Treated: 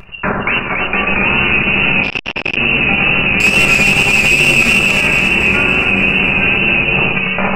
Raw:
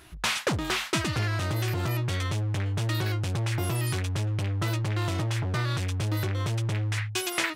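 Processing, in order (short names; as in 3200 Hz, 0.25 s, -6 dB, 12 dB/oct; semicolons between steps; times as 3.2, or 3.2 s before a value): rattling part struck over -31 dBFS, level -19 dBFS; inverted band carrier 2700 Hz; vibrato 2.3 Hz 92 cents; 3.4–4.73 sample leveller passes 3; shoebox room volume 380 m³, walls furnished, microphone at 1.2 m; level quantiser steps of 9 dB; split-band echo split 1700 Hz, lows 91 ms, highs 0.28 s, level -3 dB; maximiser +13.5 dB; 2.03–2.57 core saturation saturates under 1100 Hz; gain -1 dB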